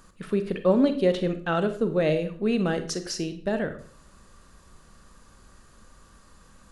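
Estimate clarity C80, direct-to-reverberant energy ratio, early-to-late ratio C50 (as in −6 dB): 15.5 dB, 8.5 dB, 11.0 dB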